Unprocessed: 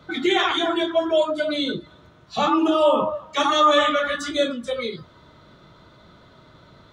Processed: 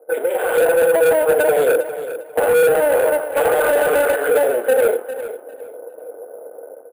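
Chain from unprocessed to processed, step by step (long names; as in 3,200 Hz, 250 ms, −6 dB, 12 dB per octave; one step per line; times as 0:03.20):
sub-harmonics by changed cycles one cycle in 2, muted
elliptic band-pass filter 310–2,800 Hz, stop band 40 dB
brickwall limiter −19 dBFS, peak gain reduction 11 dB
flat-topped bell 620 Hz +11.5 dB 1.1 octaves
downward compressor 4 to 1, threshold −21 dBFS, peak gain reduction 6 dB
low-pass that shuts in the quiet parts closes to 550 Hz, open at −20.5 dBFS
automatic gain control gain up to 10 dB
hollow resonant body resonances 480/1,500 Hz, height 18 dB, ringing for 50 ms
soft clipping −7.5 dBFS, distortion −9 dB
on a send: repeating echo 402 ms, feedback 23%, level −12.5 dB
on the sum: bad sample-rate conversion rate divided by 4×, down filtered, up hold
level −3.5 dB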